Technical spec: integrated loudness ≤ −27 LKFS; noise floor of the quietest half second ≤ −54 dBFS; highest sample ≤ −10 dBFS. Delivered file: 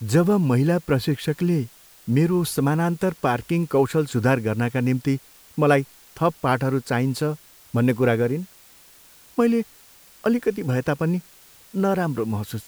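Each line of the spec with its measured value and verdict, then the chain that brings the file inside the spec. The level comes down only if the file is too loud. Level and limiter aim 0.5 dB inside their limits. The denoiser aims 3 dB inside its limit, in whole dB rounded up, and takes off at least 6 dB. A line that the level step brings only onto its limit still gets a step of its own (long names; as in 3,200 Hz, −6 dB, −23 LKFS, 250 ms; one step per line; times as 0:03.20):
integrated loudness −22.5 LKFS: out of spec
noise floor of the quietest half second −51 dBFS: out of spec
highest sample −5.0 dBFS: out of spec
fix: level −5 dB
brickwall limiter −10.5 dBFS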